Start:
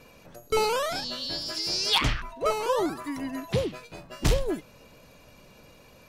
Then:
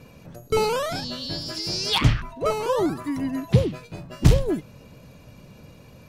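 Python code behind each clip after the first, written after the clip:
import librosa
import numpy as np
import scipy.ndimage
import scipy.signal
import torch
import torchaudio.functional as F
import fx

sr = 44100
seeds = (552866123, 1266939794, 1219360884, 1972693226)

y = fx.peak_eq(x, sr, hz=120.0, db=12.5, octaves=2.5)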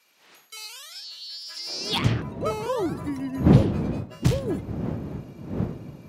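y = fx.dmg_wind(x, sr, seeds[0], corner_hz=210.0, level_db=-22.0)
y = fx.filter_sweep_highpass(y, sr, from_hz=3300.0, to_hz=100.0, start_s=1.38, end_s=2.07, q=0.8)
y = y * 10.0 ** (-4.0 / 20.0)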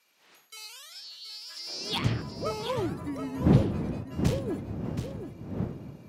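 y = x + 10.0 ** (-9.0 / 20.0) * np.pad(x, (int(725 * sr / 1000.0), 0))[:len(x)]
y = y * 10.0 ** (-5.0 / 20.0)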